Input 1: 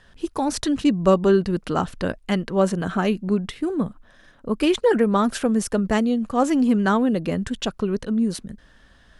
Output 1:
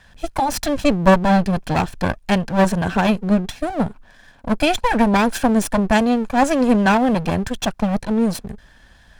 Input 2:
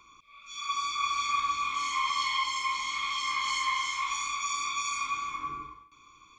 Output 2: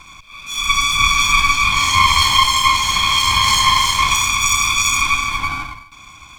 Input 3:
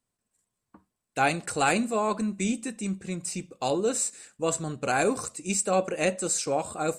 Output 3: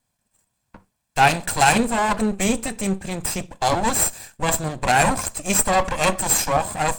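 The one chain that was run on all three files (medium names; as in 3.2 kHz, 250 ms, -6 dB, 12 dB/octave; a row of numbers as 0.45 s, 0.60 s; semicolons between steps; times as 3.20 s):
comb filter that takes the minimum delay 1.2 ms; peak normalisation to -1.5 dBFS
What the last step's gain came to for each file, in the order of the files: +5.0 dB, +18.5 dB, +10.5 dB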